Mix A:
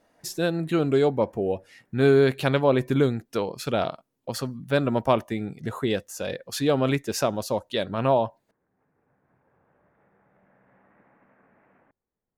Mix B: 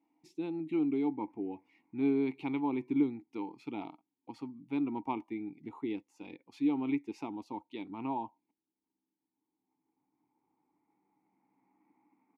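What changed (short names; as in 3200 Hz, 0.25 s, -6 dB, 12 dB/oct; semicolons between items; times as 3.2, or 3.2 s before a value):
background: entry +0.90 s; master: add vowel filter u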